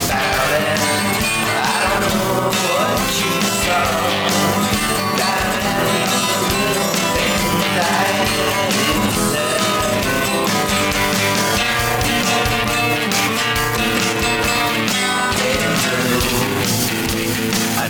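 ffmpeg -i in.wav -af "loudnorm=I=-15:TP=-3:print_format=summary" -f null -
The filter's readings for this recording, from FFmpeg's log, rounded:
Input Integrated:    -16.3 LUFS
Input True Peak:      -2.9 dBTP
Input LRA:             0.7 LU
Input Threshold:     -26.3 LUFS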